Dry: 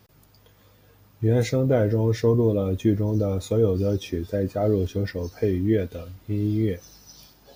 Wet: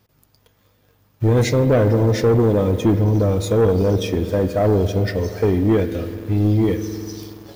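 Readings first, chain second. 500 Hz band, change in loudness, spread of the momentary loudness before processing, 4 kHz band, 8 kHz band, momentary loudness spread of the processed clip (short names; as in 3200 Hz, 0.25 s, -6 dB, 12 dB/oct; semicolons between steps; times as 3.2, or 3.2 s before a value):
+5.5 dB, +5.5 dB, 7 LU, +7.5 dB, +7.5 dB, 9 LU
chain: spring tank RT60 3.1 s, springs 48 ms, chirp 75 ms, DRR 10 dB; sample leveller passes 2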